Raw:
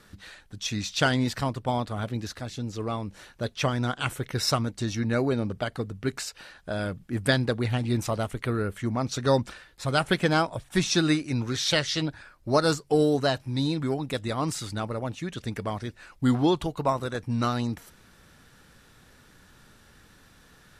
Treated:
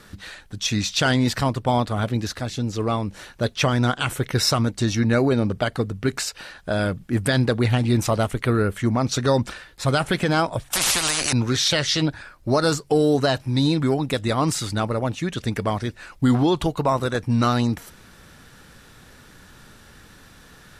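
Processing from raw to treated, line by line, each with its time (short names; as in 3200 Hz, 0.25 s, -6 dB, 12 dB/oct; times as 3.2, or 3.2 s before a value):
10.73–11.33 spectral compressor 10:1
whole clip: limiter -17.5 dBFS; gain +7.5 dB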